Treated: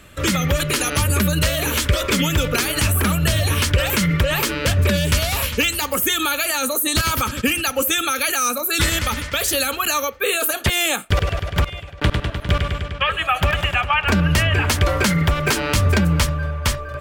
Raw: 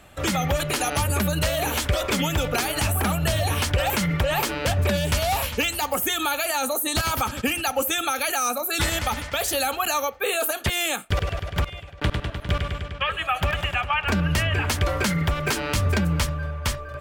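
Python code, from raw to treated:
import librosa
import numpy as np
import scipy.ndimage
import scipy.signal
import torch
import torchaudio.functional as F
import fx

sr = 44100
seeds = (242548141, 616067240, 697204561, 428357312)

y = fx.peak_eq(x, sr, hz=770.0, db=fx.steps((0.0, -14.5), (10.54, -2.0)), octaves=0.43)
y = y * librosa.db_to_amplitude(5.5)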